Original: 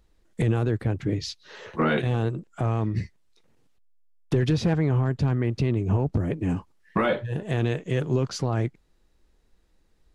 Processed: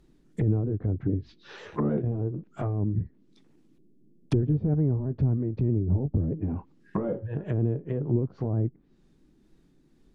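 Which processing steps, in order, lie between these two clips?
repeated pitch sweeps -1.5 st, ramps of 0.316 s; band noise 130–360 Hz -64 dBFS; treble ducked by the level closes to 420 Hz, closed at -23.5 dBFS

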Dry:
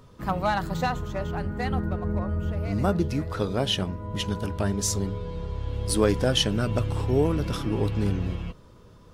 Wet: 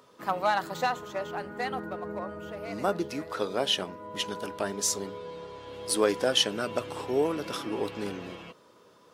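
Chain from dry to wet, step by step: HPF 370 Hz 12 dB/oct

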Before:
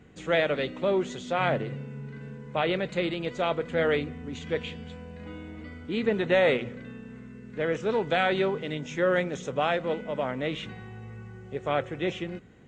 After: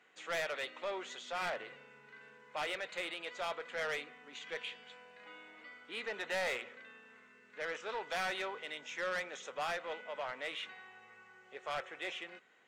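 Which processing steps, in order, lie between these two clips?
HPF 960 Hz 12 dB/oct; high shelf 6300 Hz -8.5 dB; soft clip -30 dBFS, distortion -8 dB; gain -1.5 dB

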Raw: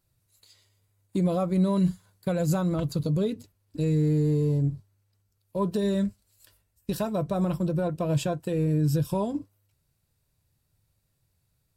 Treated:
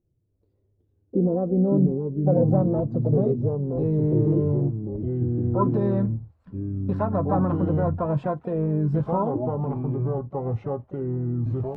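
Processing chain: low-pass sweep 370 Hz -> 1100 Hz, 0.91–4.8; echoes that change speed 0.261 s, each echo -4 st, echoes 2; harmoniser +5 st -14 dB

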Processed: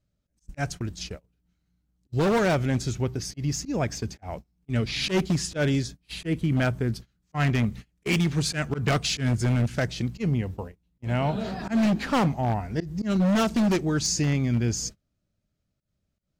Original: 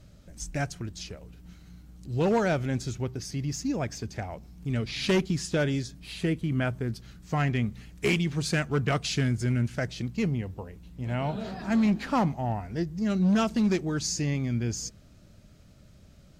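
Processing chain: auto swell 0.11 s; gate -40 dBFS, range -28 dB; wavefolder -21.5 dBFS; gain +4.5 dB

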